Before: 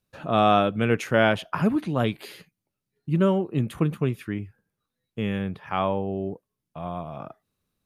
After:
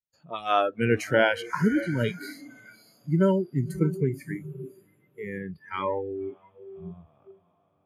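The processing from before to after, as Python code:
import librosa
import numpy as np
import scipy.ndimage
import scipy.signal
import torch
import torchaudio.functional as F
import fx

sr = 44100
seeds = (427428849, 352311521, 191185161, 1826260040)

y = fx.echo_diffused(x, sr, ms=577, feedback_pct=50, wet_db=-9.0)
y = fx.noise_reduce_blind(y, sr, reduce_db=27)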